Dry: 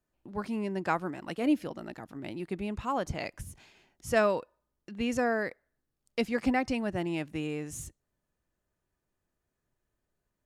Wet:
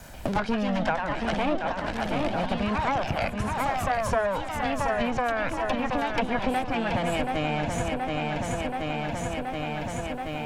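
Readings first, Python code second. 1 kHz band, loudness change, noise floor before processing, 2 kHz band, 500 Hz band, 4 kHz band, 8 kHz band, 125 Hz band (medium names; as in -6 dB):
+10.0 dB, +4.5 dB, -84 dBFS, +7.0 dB, +5.0 dB, +9.5 dB, +5.0 dB, +9.5 dB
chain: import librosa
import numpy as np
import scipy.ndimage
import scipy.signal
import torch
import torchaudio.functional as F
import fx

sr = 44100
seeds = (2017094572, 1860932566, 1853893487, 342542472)

p1 = fx.lower_of_two(x, sr, delay_ms=1.3)
p2 = fx.env_lowpass_down(p1, sr, base_hz=1600.0, full_db=-29.0)
p3 = fx.level_steps(p2, sr, step_db=22)
p4 = p2 + (p3 * librosa.db_to_amplitude(-1.5))
p5 = fx.echo_pitch(p4, sr, ms=190, semitones=2, count=2, db_per_echo=-6.0)
p6 = p5 + fx.echo_feedback(p5, sr, ms=727, feedback_pct=49, wet_db=-8.0, dry=0)
p7 = fx.band_squash(p6, sr, depth_pct=100)
y = p7 * librosa.db_to_amplitude(6.0)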